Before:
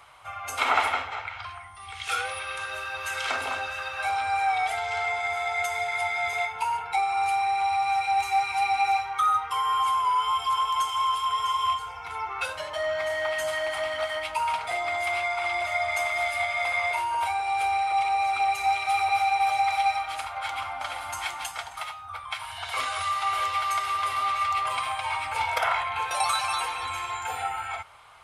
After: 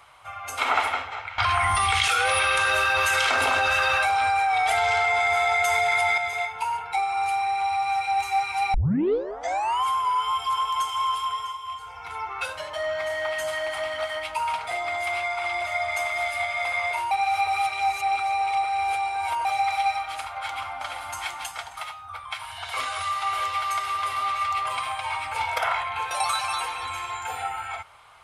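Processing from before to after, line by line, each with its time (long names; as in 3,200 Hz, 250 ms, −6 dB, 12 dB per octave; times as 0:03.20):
0:01.38–0:06.18: envelope flattener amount 100%
0:08.74: tape start 1.10 s
0:11.21–0:12.05: duck −11.5 dB, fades 0.40 s
0:17.11–0:19.45: reverse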